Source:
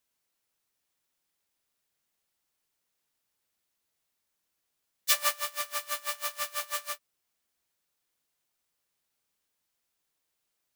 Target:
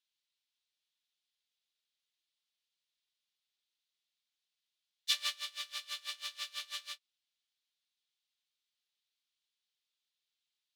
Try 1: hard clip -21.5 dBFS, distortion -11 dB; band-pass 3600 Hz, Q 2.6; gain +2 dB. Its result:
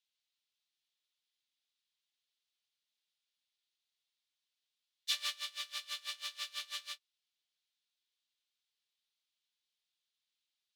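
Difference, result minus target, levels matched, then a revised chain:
hard clip: distortion +9 dB
hard clip -14.5 dBFS, distortion -20 dB; band-pass 3600 Hz, Q 2.6; gain +2 dB

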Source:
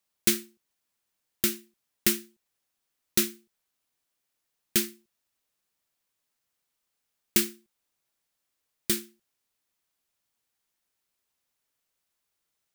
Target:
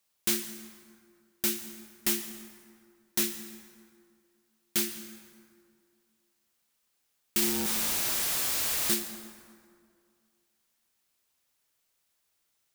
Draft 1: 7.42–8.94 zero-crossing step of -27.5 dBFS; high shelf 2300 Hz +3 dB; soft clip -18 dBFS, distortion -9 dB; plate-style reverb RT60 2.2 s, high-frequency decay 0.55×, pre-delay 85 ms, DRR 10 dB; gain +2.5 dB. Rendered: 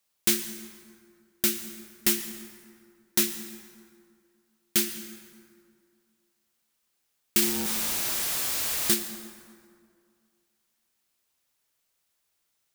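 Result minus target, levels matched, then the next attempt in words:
soft clip: distortion -5 dB
7.42–8.94 zero-crossing step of -27.5 dBFS; high shelf 2300 Hz +3 dB; soft clip -25 dBFS, distortion -4 dB; plate-style reverb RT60 2.2 s, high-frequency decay 0.55×, pre-delay 85 ms, DRR 10 dB; gain +2.5 dB

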